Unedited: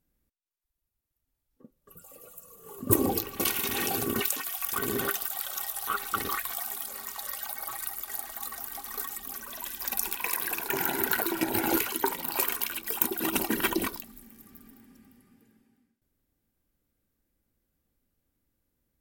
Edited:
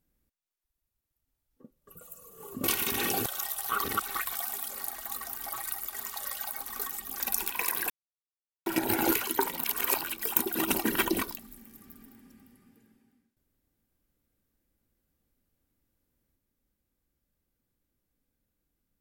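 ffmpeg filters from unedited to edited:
-filter_complex "[0:a]asplit=15[a][b][c][d][e][f][g][h][i][j][k][l][m][n][o];[a]atrim=end=2.012[p];[b]atrim=start=2.268:end=2.902[q];[c]atrim=start=3.408:end=4.032[r];[d]atrim=start=5.438:end=5.982[s];[e]atrim=start=5.978:end=6.332,asetpts=PTS-STARTPTS,areverse[t];[f]atrim=start=6.328:end=7.022[u];[g]atrim=start=8.148:end=8.792[v];[h]atrim=start=7.628:end=8.152[w];[i]atrim=start=7.018:end=7.632[x];[j]atrim=start=8.788:end=9.382[y];[k]atrim=start=9.848:end=10.55,asetpts=PTS-STARTPTS,afade=t=out:st=0.698:d=0.004:c=hsin[z];[l]atrim=start=10.55:end=11.31,asetpts=PTS-STARTPTS,volume=0[aa];[m]atrim=start=11.31:end=12.292,asetpts=PTS-STARTPTS,afade=t=in:d=0.004:c=hsin[ab];[n]atrim=start=12.288:end=12.692,asetpts=PTS-STARTPTS,areverse[ac];[o]atrim=start=12.688[ad];[p][q]acrossfade=d=0.004:c1=hsin:c2=hsin[ae];[ae][r]acrossfade=d=0.004:c1=hsin:c2=hsin[af];[af][s]acrossfade=d=0.004:c1=hsin:c2=hsin[ag];[ag][t]acrossfade=d=0.004:c1=hsin:c2=hsin[ah];[ah][u]acrossfade=d=0.004:c1=hsin:c2=hsin[ai];[ai][v]acrossfade=d=0.004:c1=hsin:c2=hsin[aj];[aj][w]acrossfade=d=0.004:c1=hsin:c2=hsin[ak];[ak][x]acrossfade=d=0.004:c1=hsin:c2=hsin[al];[al][y]acrossfade=d=0.004:c1=hsin:c2=hsin[am];[z][aa][ab]concat=n=3:v=0:a=1[an];[am][an]acrossfade=d=0.004:c1=hsin:c2=hsin[ao];[ao][ac]acrossfade=d=0.004:c1=hsin:c2=hsin[ap];[ap][ad]acrossfade=d=0.004:c1=hsin:c2=hsin"

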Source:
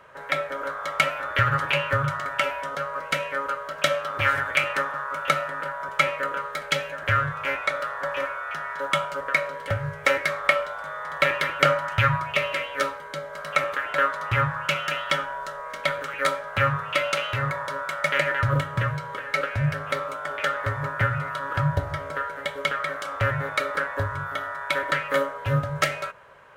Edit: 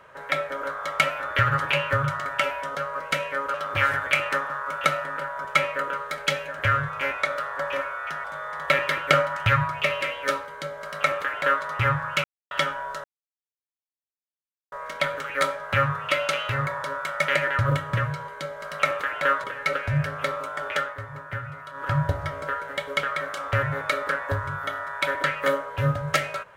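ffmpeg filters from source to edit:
-filter_complex "[0:a]asplit=10[a][b][c][d][e][f][g][h][i][j];[a]atrim=end=3.542[k];[b]atrim=start=3.978:end=8.682[l];[c]atrim=start=10.758:end=14.76,asetpts=PTS-STARTPTS,afade=t=out:st=3.998:d=0.004:c=hsin[m];[d]atrim=start=14.76:end=15.03,asetpts=PTS-STARTPTS,volume=0[n];[e]atrim=start=15.03:end=15.56,asetpts=PTS-STARTPTS,afade=t=in:d=0.004:c=hsin,afade=t=out:st=0.526:d=0.004:c=hsin,apad=pad_dur=1.68[o];[f]atrim=start=15.56:end=19.122,asetpts=PTS-STARTPTS,afade=t=in:d=0.004:c=hsin[p];[g]atrim=start=13.008:end=14.172[q];[h]atrim=start=19.118:end=20.64,asetpts=PTS-STARTPTS,afade=t=out:st=1.262:d=0.26:c=qsin:silence=0.334965[r];[i]atrim=start=20.64:end=21.41,asetpts=PTS-STARTPTS,volume=-9.5dB[s];[j]atrim=start=21.41,asetpts=PTS-STARTPTS,afade=t=in:d=0.26:c=qsin:silence=0.334965[t];[k][l]acrossfade=d=0.004:c1=hsin:c2=hsin[u];[m][n][o][p]concat=n=4:v=0:a=1[v];[u][v]acrossfade=d=0.004:c1=hsin:c2=hsin[w];[w][q]acrossfade=d=0.004:c1=hsin:c2=hsin[x];[r][s][t]concat=n=3:v=0:a=1[y];[x][y]acrossfade=d=0.004:c1=hsin:c2=hsin"

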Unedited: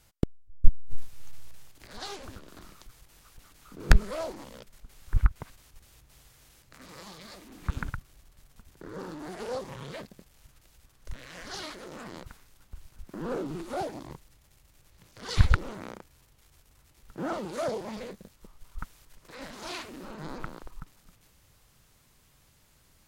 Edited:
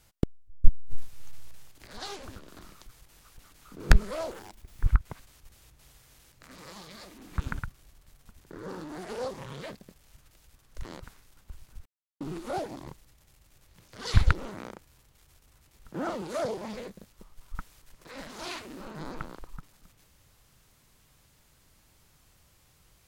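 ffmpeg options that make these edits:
-filter_complex "[0:a]asplit=6[a][b][c][d][e][f];[a]atrim=end=4.314[g];[b]atrim=start=4.31:end=5.13,asetpts=PTS-STARTPTS,asetrate=70119,aresample=44100,atrim=end_sample=22743,asetpts=PTS-STARTPTS[h];[c]atrim=start=5.126:end=11.152[i];[d]atrim=start=12.078:end=13.09,asetpts=PTS-STARTPTS,afade=t=out:st=1.008:d=0.004:c=hsin[j];[e]atrim=start=13.09:end=13.44,asetpts=PTS-STARTPTS,volume=0[k];[f]atrim=start=13.44,asetpts=PTS-STARTPTS,afade=t=in:d=0.004:c=hsin[l];[g][h]acrossfade=d=0.004:c1=hsin:c2=hsin[m];[m][i]acrossfade=d=0.004:c1=hsin:c2=hsin[n];[j][k][l]concat=n=3:v=0:a=1[o];[n][o]acrossfade=d=0.004:c1=hsin:c2=hsin"

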